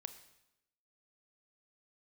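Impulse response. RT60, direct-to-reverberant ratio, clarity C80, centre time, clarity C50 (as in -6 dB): 0.90 s, 9.5 dB, 14.0 dB, 9 ms, 12.0 dB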